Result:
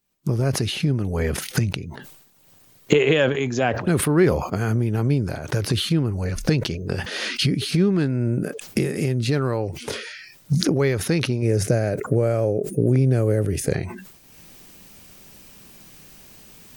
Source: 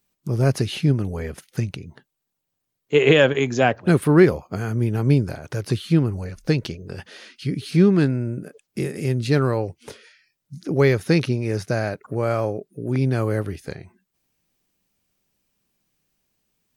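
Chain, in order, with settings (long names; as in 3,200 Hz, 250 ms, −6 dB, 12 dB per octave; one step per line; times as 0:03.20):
camcorder AGC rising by 35 dB per second
0:11.42–0:13.74: octave-band graphic EQ 125/500/1,000/4,000/8,000 Hz +5/+7/−10/−7/+6 dB
level that may fall only so fast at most 67 dB per second
level −4 dB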